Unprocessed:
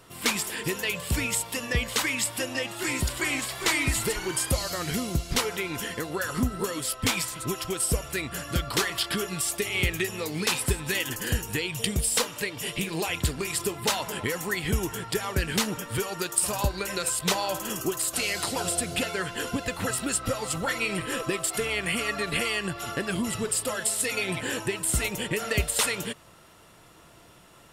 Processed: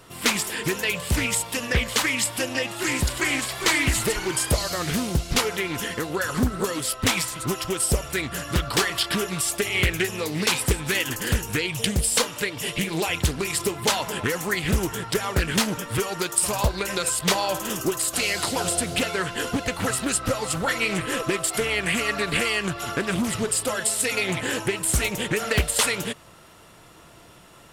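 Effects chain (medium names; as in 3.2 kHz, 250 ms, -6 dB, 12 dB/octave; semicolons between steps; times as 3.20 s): loudspeaker Doppler distortion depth 0.58 ms; trim +4 dB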